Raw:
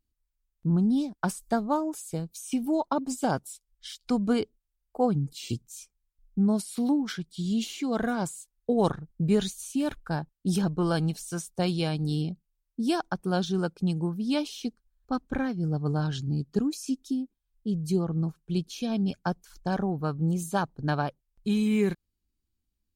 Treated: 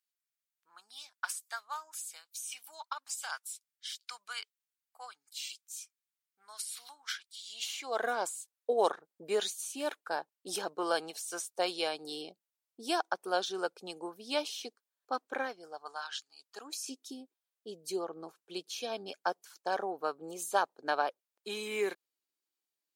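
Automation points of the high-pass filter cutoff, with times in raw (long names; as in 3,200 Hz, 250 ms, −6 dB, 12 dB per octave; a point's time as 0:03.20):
high-pass filter 24 dB per octave
0:07.35 1,300 Hz
0:08.05 440 Hz
0:15.42 440 Hz
0:16.28 1,300 Hz
0:16.84 430 Hz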